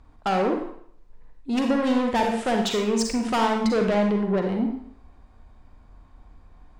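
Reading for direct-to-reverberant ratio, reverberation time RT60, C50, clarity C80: 2.0 dB, 0.60 s, 4.0 dB, 8.0 dB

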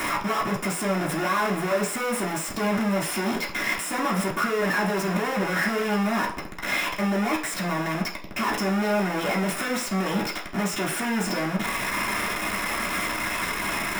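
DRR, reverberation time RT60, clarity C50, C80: −5.0 dB, 0.50 s, 9.5 dB, 13.5 dB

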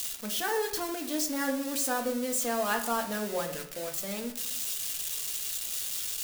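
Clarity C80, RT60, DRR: 12.5 dB, 0.70 s, 3.0 dB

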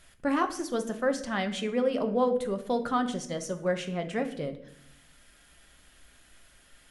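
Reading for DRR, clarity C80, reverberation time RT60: 6.0 dB, 15.5 dB, 0.75 s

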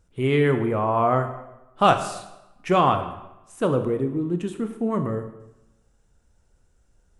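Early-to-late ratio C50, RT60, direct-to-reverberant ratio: 10.0 dB, 0.95 s, 7.5 dB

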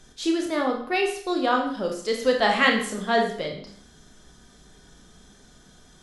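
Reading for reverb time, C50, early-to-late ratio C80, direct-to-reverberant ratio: 0.55 s, 6.5 dB, 10.0 dB, 1.5 dB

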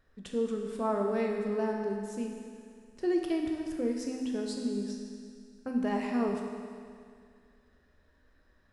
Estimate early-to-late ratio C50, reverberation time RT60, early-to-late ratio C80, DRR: 3.0 dB, 2.2 s, 4.0 dB, 1.0 dB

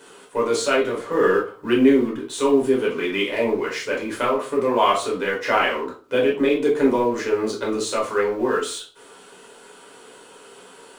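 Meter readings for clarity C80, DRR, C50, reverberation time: 13.0 dB, −4.0 dB, 7.0 dB, 0.40 s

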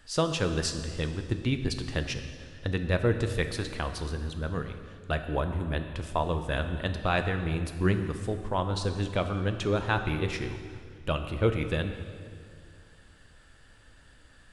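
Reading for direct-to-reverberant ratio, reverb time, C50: 7.0 dB, 2.1 s, 8.5 dB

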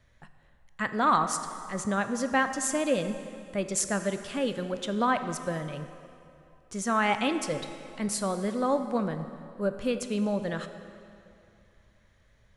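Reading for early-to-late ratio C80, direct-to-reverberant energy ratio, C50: 10.5 dB, 8.5 dB, 9.5 dB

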